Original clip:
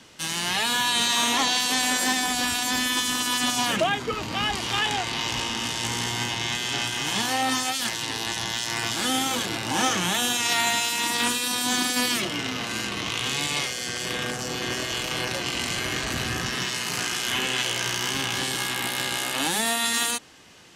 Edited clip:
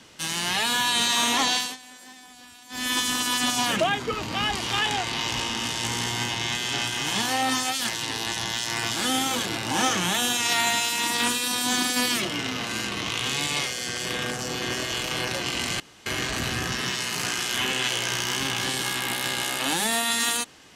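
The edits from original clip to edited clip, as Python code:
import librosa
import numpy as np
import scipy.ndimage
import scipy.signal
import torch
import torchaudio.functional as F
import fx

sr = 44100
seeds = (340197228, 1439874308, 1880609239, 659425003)

y = fx.edit(x, sr, fx.fade_down_up(start_s=1.54, length_s=1.38, db=-22.5, fade_s=0.23),
    fx.insert_room_tone(at_s=15.8, length_s=0.26), tone=tone)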